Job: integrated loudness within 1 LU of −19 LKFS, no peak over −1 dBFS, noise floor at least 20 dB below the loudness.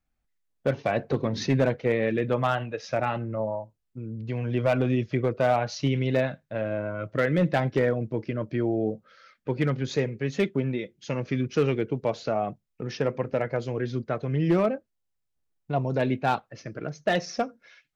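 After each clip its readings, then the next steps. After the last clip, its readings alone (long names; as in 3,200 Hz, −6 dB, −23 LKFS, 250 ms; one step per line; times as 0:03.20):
share of clipped samples 0.4%; peaks flattened at −15.0 dBFS; integrated loudness −27.5 LKFS; sample peak −15.0 dBFS; target loudness −19.0 LKFS
→ clipped peaks rebuilt −15 dBFS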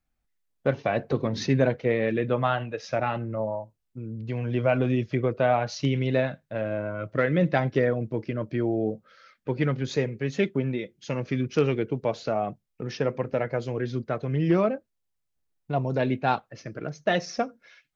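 share of clipped samples 0.0%; integrated loudness −27.0 LKFS; sample peak −9.5 dBFS; target loudness −19.0 LKFS
→ level +8 dB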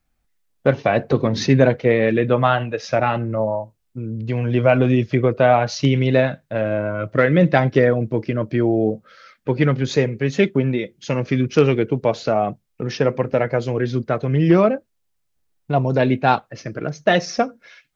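integrated loudness −19.0 LKFS; sample peak −1.5 dBFS; background noise floor −70 dBFS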